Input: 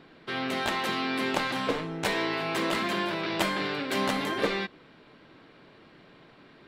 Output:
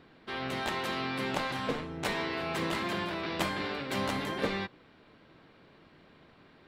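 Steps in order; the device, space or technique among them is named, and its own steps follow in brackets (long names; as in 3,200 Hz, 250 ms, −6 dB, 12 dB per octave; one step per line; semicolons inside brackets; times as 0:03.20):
octave pedal (pitch-shifted copies added −12 semitones −6 dB)
level −5 dB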